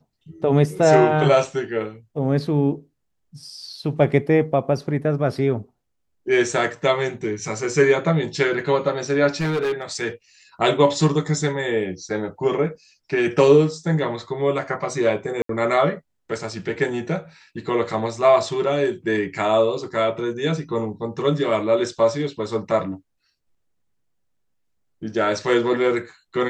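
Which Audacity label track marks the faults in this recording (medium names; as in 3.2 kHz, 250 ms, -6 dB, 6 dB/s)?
9.360000	10.010000	clipped -19 dBFS
15.420000	15.490000	dropout 73 ms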